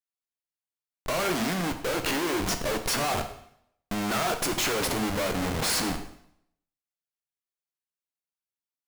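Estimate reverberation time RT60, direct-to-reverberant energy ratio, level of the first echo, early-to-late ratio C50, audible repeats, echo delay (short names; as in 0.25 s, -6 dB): 0.70 s, 6.0 dB, none, 9.5 dB, none, none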